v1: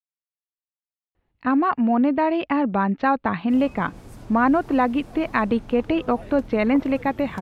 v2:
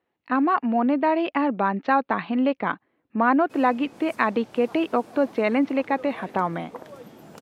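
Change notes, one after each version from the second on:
speech: entry -1.15 s; master: add high-pass 260 Hz 12 dB/octave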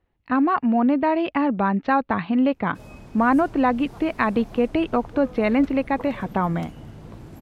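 background: entry -0.75 s; master: remove high-pass 260 Hz 12 dB/octave

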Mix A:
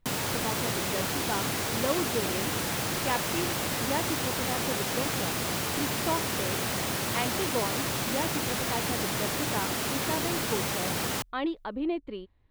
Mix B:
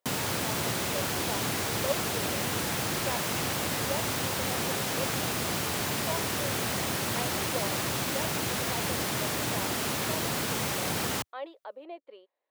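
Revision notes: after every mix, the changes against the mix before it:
speech: add ladder high-pass 500 Hz, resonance 60%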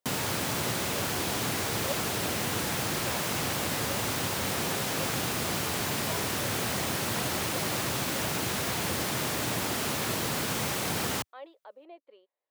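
speech -6.5 dB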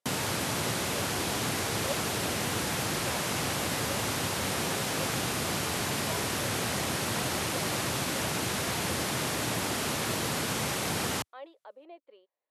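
background: add brick-wall FIR low-pass 13 kHz

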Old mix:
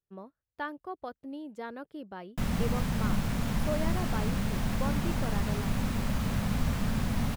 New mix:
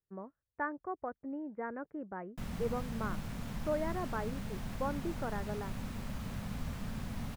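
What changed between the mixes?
speech: add steep low-pass 2.1 kHz 48 dB/octave; background -10.5 dB

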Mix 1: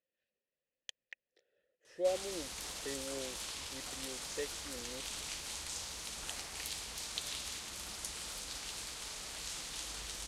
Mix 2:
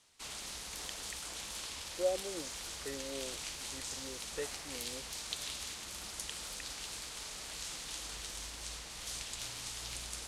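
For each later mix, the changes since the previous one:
background: entry -1.85 s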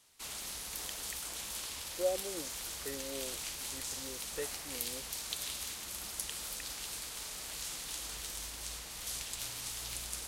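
master: remove low-pass 8.4 kHz 12 dB/octave

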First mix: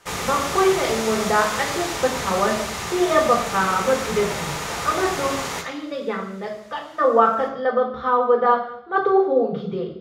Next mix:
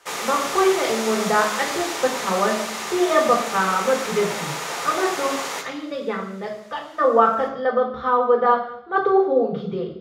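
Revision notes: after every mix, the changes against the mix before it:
background: add high-pass 330 Hz 12 dB/octave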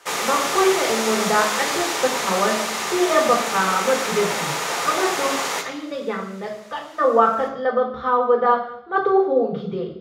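background +4.0 dB

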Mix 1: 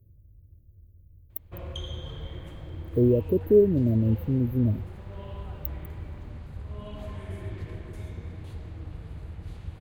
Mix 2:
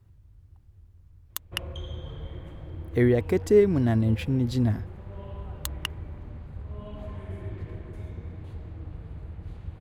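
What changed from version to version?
speech: remove brick-wall FIR band-stop 660–13000 Hz; master: add treble shelf 2.7 kHz -10 dB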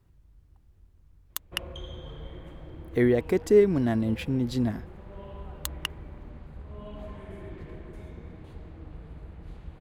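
master: add peaking EQ 96 Hz -12.5 dB 0.6 oct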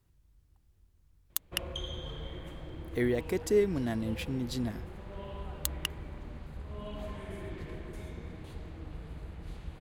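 speech -7.5 dB; master: add treble shelf 2.7 kHz +10 dB

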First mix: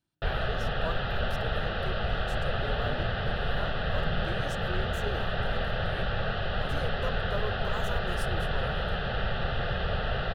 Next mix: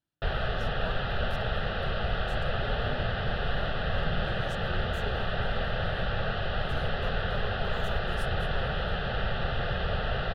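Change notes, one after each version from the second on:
speech -6.0 dB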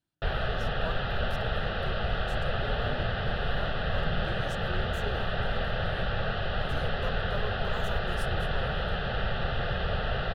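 speech +3.0 dB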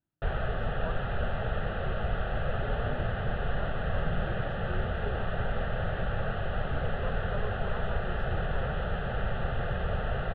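speech: add distance through air 53 m; master: add distance through air 490 m

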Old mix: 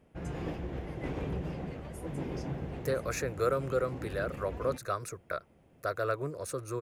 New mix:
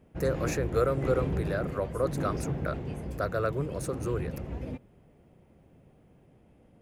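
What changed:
speech: entry -2.65 s; master: add bass shelf 490 Hz +5.5 dB

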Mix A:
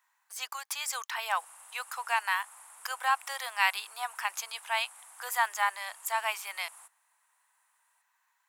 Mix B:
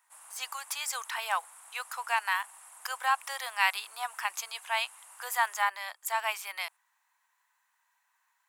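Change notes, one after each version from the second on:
background: entry -1.25 s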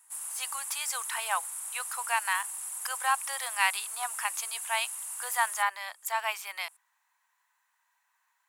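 background: remove low-pass 1.5 kHz 6 dB/octave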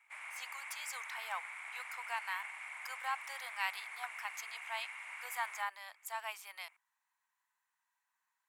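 speech -11.0 dB; background: add resonant low-pass 2.2 kHz, resonance Q 12

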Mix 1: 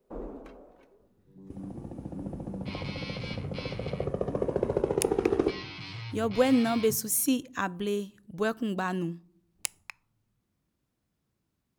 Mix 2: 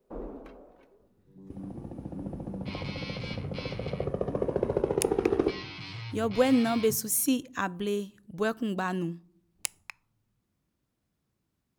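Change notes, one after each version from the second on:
first sound: add peaking EQ 7.4 kHz -6 dB 0.7 oct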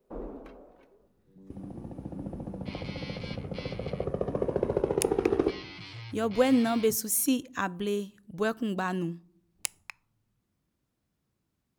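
second sound: send off

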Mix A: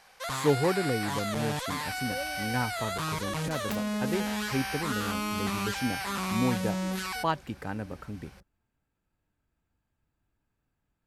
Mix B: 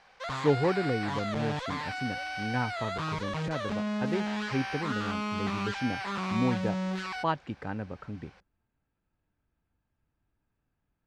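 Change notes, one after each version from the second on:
second sound -12.0 dB; master: add distance through air 140 m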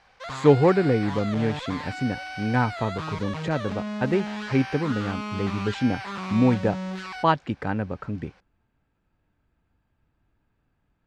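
speech +8.5 dB

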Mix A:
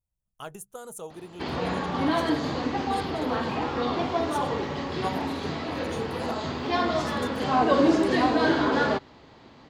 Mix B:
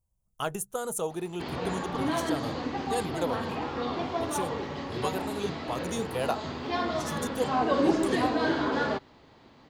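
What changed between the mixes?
speech +8.0 dB; background -4.5 dB

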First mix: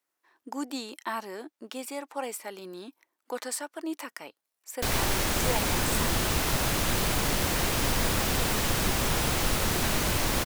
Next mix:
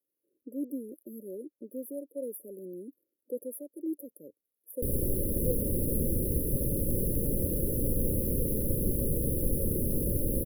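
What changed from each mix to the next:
master: add brick-wall FIR band-stop 590–9900 Hz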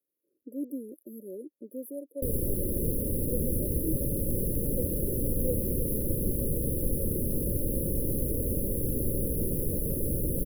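background: entry -2.60 s

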